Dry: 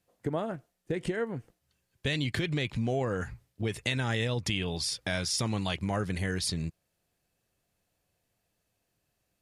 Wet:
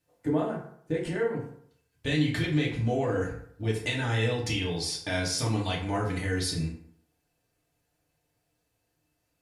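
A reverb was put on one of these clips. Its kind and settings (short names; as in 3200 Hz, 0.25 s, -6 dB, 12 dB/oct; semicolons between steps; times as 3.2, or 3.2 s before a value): FDN reverb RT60 0.65 s, low-frequency decay 0.9×, high-frequency decay 0.6×, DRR -4.5 dB; gain -4 dB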